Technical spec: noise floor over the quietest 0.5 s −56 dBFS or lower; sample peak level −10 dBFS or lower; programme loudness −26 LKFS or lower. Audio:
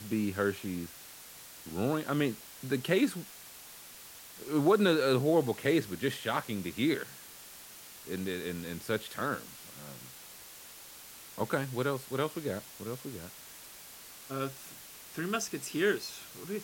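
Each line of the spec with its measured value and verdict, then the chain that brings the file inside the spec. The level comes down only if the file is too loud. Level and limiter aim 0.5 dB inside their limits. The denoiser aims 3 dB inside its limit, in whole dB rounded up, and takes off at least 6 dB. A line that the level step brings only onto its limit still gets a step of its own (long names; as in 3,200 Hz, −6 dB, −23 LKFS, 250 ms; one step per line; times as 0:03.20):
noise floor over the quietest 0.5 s −50 dBFS: out of spec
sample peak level −13.5 dBFS: in spec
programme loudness −32.5 LKFS: in spec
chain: broadband denoise 9 dB, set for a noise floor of −50 dBFS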